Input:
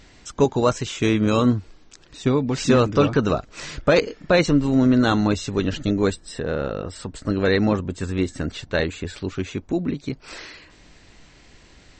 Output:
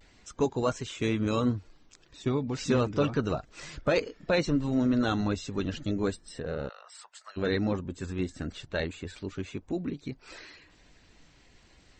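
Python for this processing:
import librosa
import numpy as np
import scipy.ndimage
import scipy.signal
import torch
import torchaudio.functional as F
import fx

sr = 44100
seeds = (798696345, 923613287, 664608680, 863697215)

y = fx.spec_quant(x, sr, step_db=15)
y = fx.vibrato(y, sr, rate_hz=0.35, depth_cents=25.0)
y = fx.cheby2_highpass(y, sr, hz=310.0, order=4, stop_db=50, at=(6.68, 7.36), fade=0.02)
y = y * librosa.db_to_amplitude(-8.5)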